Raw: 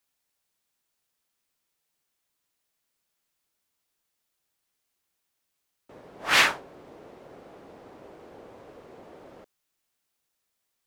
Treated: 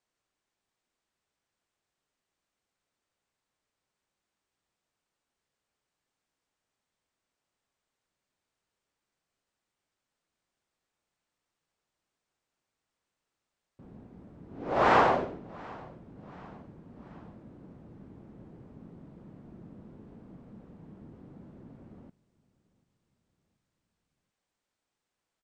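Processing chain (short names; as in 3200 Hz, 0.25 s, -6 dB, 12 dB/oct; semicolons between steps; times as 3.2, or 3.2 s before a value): high shelf 4900 Hz -9.5 dB; on a send: frequency-shifting echo 0.313 s, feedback 52%, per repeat -45 Hz, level -23 dB; on the sum: speed mistake 78 rpm record played at 33 rpm; gain -1.5 dB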